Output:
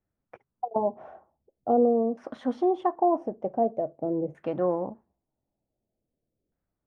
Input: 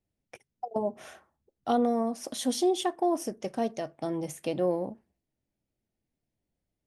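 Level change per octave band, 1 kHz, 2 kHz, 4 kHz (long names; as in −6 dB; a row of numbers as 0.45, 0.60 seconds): +4.0 dB, can't be measured, below −15 dB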